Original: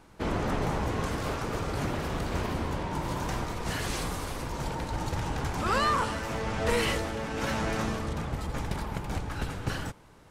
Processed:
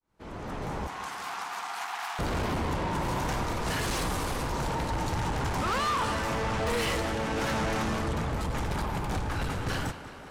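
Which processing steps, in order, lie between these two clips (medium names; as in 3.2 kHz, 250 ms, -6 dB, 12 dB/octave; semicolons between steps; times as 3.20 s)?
fade-in on the opening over 2.16 s; peaking EQ 950 Hz +2 dB; in parallel at -1 dB: peak limiter -22 dBFS, peak gain reduction 8.5 dB; on the sum: saturation -25.5 dBFS, distortion -10 dB; 0.87–2.19 s: brick-wall FIR high-pass 670 Hz; on a send: tape echo 188 ms, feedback 87%, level -11.5 dB, low-pass 5.6 kHz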